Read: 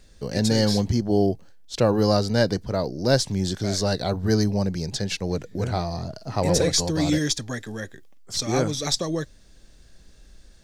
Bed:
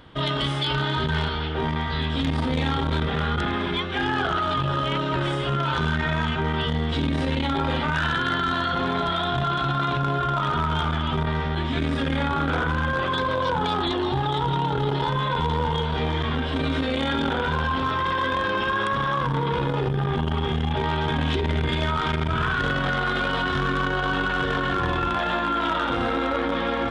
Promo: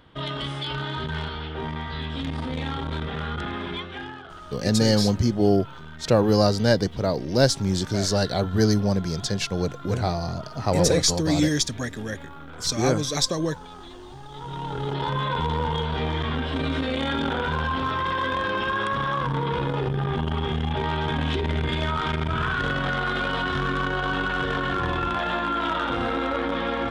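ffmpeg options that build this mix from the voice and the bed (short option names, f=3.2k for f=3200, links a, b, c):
-filter_complex "[0:a]adelay=4300,volume=1dB[a];[1:a]volume=11.5dB,afade=t=out:st=3.74:d=0.48:silence=0.223872,afade=t=in:st=14.29:d=0.88:silence=0.141254[b];[a][b]amix=inputs=2:normalize=0"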